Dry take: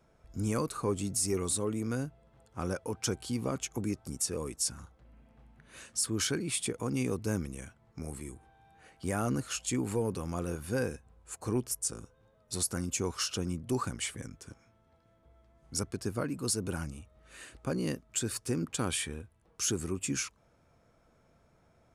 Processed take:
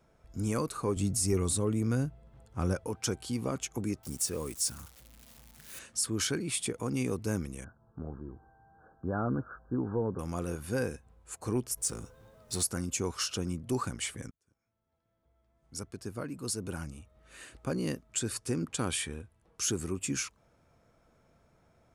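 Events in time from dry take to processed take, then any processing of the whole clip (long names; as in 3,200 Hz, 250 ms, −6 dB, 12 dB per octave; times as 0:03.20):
0:00.96–0:02.88: low-shelf EQ 160 Hz +10.5 dB
0:04.03–0:05.79: spike at every zero crossing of −39 dBFS
0:07.64–0:10.19: linear-phase brick-wall low-pass 1,700 Hz
0:11.77–0:12.67: mu-law and A-law mismatch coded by mu
0:14.31–0:17.55: fade in
0:18.10–0:19.65: linear-phase brick-wall low-pass 12,000 Hz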